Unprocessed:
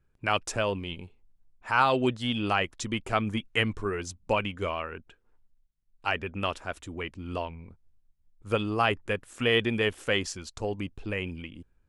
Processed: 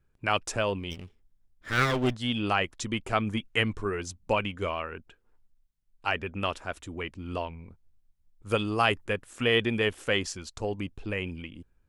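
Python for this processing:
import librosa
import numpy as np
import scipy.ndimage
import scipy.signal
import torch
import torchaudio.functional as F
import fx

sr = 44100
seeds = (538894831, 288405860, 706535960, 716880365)

y = fx.lower_of_two(x, sr, delay_ms=0.57, at=(0.9, 2.14), fade=0.02)
y = fx.high_shelf(y, sr, hz=fx.line((8.48, 5100.0), (9.04, 3700.0)), db=8.0, at=(8.48, 9.04), fade=0.02)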